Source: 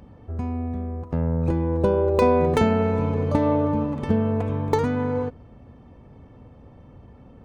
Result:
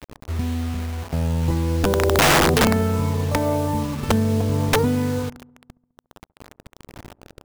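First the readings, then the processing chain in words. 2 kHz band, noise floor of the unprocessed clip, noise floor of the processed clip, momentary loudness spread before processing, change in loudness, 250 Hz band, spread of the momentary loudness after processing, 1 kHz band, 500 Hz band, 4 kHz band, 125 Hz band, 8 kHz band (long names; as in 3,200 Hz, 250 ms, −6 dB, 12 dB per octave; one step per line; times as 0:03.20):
+12.0 dB, −48 dBFS, −74 dBFS, 11 LU, +2.5 dB, +1.0 dB, 12 LU, +3.0 dB, −0.5 dB, +17.0 dB, +3.0 dB, can't be measured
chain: phase shifter 0.43 Hz, delay 1.4 ms, feedback 45%
wrap-around overflow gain 9.5 dB
bit reduction 6 bits
on a send: delay with a low-pass on its return 69 ms, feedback 64%, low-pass 800 Hz, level −21.5 dB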